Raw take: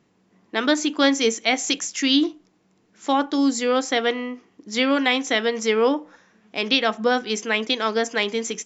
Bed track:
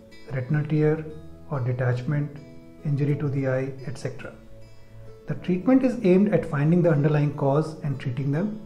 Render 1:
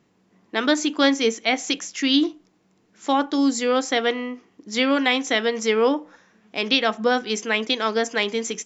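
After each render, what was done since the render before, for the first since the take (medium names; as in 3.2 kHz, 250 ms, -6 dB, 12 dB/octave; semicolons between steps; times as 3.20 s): 1.14–2.14 s: distance through air 67 m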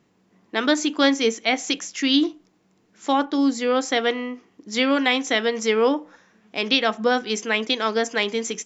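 3.25–3.81 s: distance through air 84 m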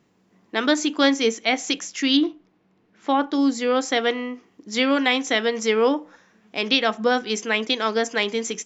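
2.17–3.23 s: low-pass 3.3 kHz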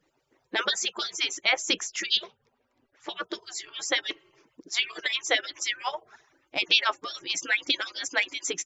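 harmonic-percussive separation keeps percussive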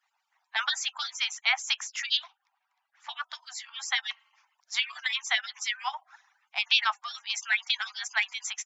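steep high-pass 750 Hz 72 dB/octave; treble shelf 4.5 kHz -5.5 dB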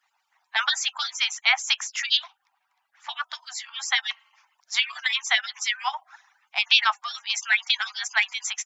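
trim +5 dB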